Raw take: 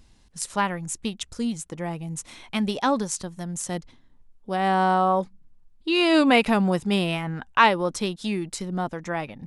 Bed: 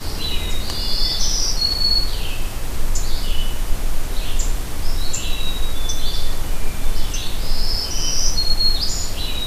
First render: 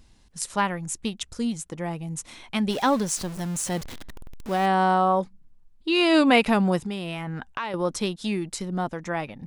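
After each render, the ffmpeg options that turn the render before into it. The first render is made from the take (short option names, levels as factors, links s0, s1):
-filter_complex "[0:a]asettb=1/sr,asplit=3[s0][s1][s2];[s0]atrim=end=2.704[s3];[s1]atrim=start=2.7:end=4.66,asetpts=PTS-STARTPTS,afade=t=in:d=0.004:c=qsin,afade=t=out:st=1.956:d=0.004:c=qsin,aeval=exprs='val(0)+0.5*0.0237*sgn(val(0))':c=same[s4];[s2]atrim=start=4.656[s5];[s3][s4]acrossfade=d=0.004:c1=hsin:c2=qsin[s6];[s6][s5]acrossfade=d=0.004:c1=qsin:c2=hsin,asettb=1/sr,asplit=3[s7][s8][s9];[s7]atrim=end=6.804[s10];[s8]atrim=start=6.8:end=7.74,asetpts=PTS-STARTPTS,afade=t=in:d=0.004:c=qsin,afade=t=out:st=0.936:d=0.004:c=qsin,acompressor=threshold=0.0447:ratio=6:attack=3.2:release=140:knee=1:detection=peak[s11];[s9]atrim=start=7.736[s12];[s10][s11]acrossfade=d=0.004:c1=hsin:c2=qsin[s13];[s13][s12]acrossfade=d=0.004:c1=qsin:c2=hsin"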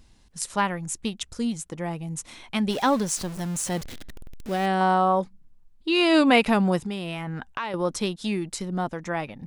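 -filter_complex "[0:a]asettb=1/sr,asplit=3[s0][s1][s2];[s0]atrim=end=3.824[s3];[s1]atrim=start=3.82:end=4.81,asetpts=PTS-STARTPTS,afade=t=in:d=0.004:c=qsin,afade=t=out:st=0.986:d=0.004:c=qsin,equalizer=f=1000:t=o:w=0.69:g=-8[s4];[s2]atrim=start=4.806[s5];[s3][s4]acrossfade=d=0.004:c1=hsin:c2=qsin[s6];[s6][s5]acrossfade=d=0.004:c1=qsin:c2=hsin"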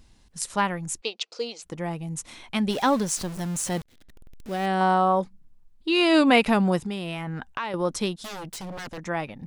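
-filter_complex "[0:a]asplit=3[s0][s1][s2];[s0]afade=t=out:st=1:d=0.02[s3];[s1]highpass=f=380:w=0.5412,highpass=f=380:w=1.3066,equalizer=f=480:t=q:w=4:g=8,equalizer=f=690:t=q:w=4:g=3,equalizer=f=1700:t=q:w=4:g=-6,equalizer=f=2600:t=q:w=4:g=6,equalizer=f=4500:t=q:w=4:g=9,lowpass=f=6100:w=0.5412,lowpass=f=6100:w=1.3066,afade=t=in:st=1:d=0.02,afade=t=out:st=1.62:d=0.02[s4];[s2]afade=t=in:st=1.62:d=0.02[s5];[s3][s4][s5]amix=inputs=3:normalize=0,asettb=1/sr,asplit=3[s6][s7][s8];[s6]atrim=end=8.184[s9];[s7]atrim=start=8.18:end=8.98,asetpts=PTS-STARTPTS,afade=t=in:d=0.004:c=qsin,afade=t=out:st=0.796:d=0.004:c=qsin,aeval=exprs='0.0282*(abs(mod(val(0)/0.0282+3,4)-2)-1)':c=same[s10];[s8]atrim=start=8.976[s11];[s9][s10]acrossfade=d=0.004:c1=hsin:c2=qsin[s12];[s12][s11]acrossfade=d=0.004:c1=qsin:c2=hsin,asplit=2[s13][s14];[s13]atrim=end=3.82,asetpts=PTS-STARTPTS,afade=t=out:st=3.816:d=0.004:c=hsin[s15];[s14]atrim=start=3.82,asetpts=PTS-STARTPTS,afade=t=in:d=1.01[s16];[s15][s16]concat=n=2:v=0:a=1"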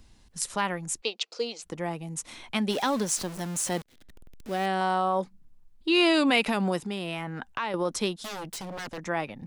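-filter_complex "[0:a]acrossover=split=190|2100[s0][s1][s2];[s0]acompressor=threshold=0.00501:ratio=6[s3];[s1]alimiter=limit=0.133:level=0:latency=1[s4];[s3][s4][s2]amix=inputs=3:normalize=0"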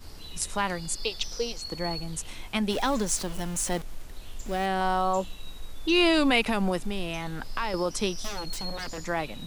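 -filter_complex "[1:a]volume=0.106[s0];[0:a][s0]amix=inputs=2:normalize=0"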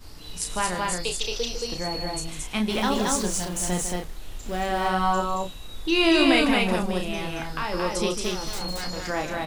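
-filter_complex "[0:a]asplit=2[s0][s1];[s1]adelay=33,volume=0.501[s2];[s0][s2]amix=inputs=2:normalize=0,asplit=2[s3][s4];[s4]aecho=0:1:151.6|224.5:0.316|0.794[s5];[s3][s5]amix=inputs=2:normalize=0"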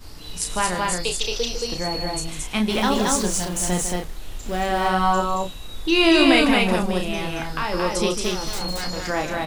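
-af "volume=1.5"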